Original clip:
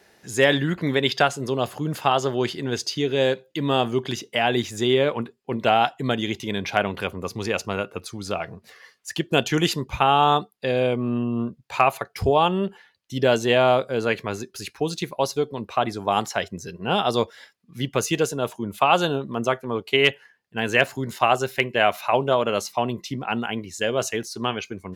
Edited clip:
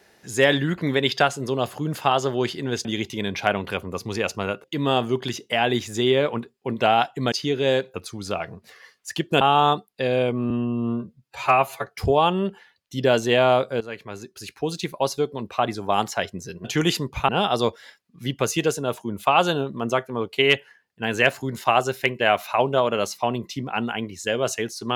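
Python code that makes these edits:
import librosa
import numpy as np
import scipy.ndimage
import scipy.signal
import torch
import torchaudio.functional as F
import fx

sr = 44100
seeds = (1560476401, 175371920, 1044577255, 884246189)

y = fx.edit(x, sr, fx.swap(start_s=2.85, length_s=0.62, other_s=6.15, other_length_s=1.79),
    fx.move(start_s=9.41, length_s=0.64, to_s=16.83),
    fx.stretch_span(start_s=11.14, length_s=0.91, factor=1.5),
    fx.fade_in_from(start_s=13.99, length_s=1.02, floor_db=-15.0), tone=tone)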